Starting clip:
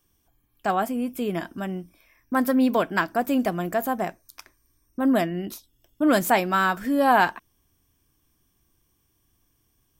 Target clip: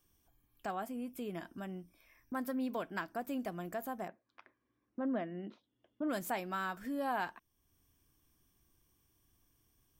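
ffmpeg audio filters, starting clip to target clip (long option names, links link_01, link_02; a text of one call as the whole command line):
ffmpeg -i in.wav -filter_complex "[0:a]acompressor=threshold=-50dB:ratio=1.5,asplit=3[link_01][link_02][link_03];[link_01]afade=type=out:start_time=4.07:duration=0.02[link_04];[link_02]highpass=160,equalizer=frequency=220:width_type=q:width=4:gain=5,equalizer=frequency=520:width_type=q:width=4:gain=5,equalizer=frequency=2500:width_type=q:width=4:gain=-4,lowpass=frequency=2900:width=0.5412,lowpass=frequency=2900:width=1.3066,afade=type=in:start_time=4.07:duration=0.02,afade=type=out:start_time=6.08:duration=0.02[link_05];[link_03]afade=type=in:start_time=6.08:duration=0.02[link_06];[link_04][link_05][link_06]amix=inputs=3:normalize=0,volume=-5dB" out.wav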